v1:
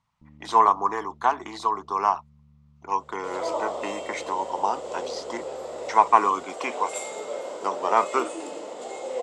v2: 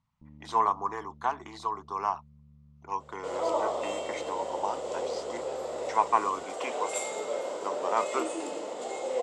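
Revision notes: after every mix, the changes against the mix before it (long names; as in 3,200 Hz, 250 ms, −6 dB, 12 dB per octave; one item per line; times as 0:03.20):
speech −7.5 dB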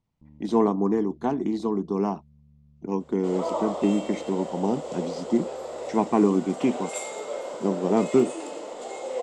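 speech: remove high-pass with resonance 1,100 Hz, resonance Q 2.5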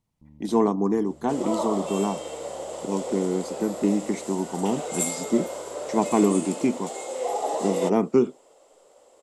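second sound: entry −1.95 s
master: remove high-frequency loss of the air 88 metres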